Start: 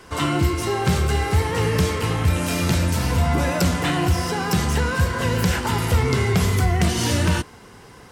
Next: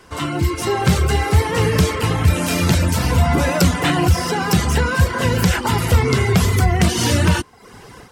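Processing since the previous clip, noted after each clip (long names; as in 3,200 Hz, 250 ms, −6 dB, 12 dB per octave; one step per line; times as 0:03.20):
reverb reduction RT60 0.57 s
automatic gain control gain up to 9 dB
level −1.5 dB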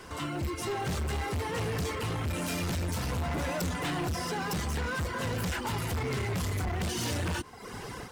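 hard clipping −18.5 dBFS, distortion −7 dB
brickwall limiter −29.5 dBFS, peak gain reduction 11 dB
floating-point word with a short mantissa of 4 bits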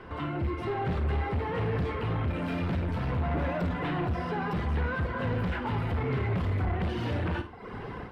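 high-frequency loss of the air 460 metres
on a send: flutter between parallel walls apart 9.1 metres, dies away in 0.31 s
on the sum: level +3 dB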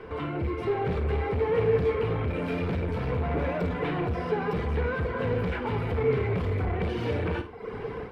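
hollow resonant body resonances 450/2,300 Hz, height 12 dB, ringing for 45 ms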